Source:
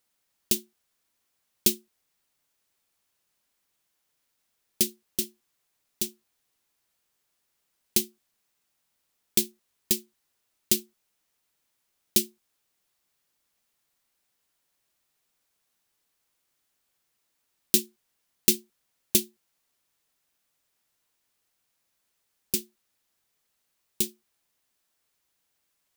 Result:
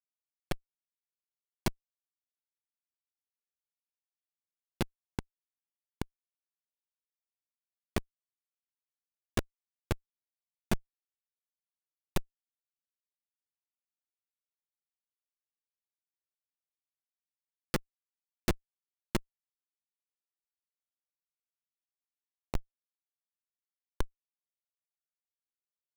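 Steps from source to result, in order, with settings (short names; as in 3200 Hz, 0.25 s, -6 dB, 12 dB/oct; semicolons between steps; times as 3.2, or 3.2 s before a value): in parallel at -0.5 dB: limiter -13.5 dBFS, peak gain reduction 10 dB; on the sum: bell 13000 Hz -2 dB 0.37 oct; added harmonics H 4 -24 dB, 8 -44 dB, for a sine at -0.5 dBFS; Schmitt trigger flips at -9 dBFS; gain +8.5 dB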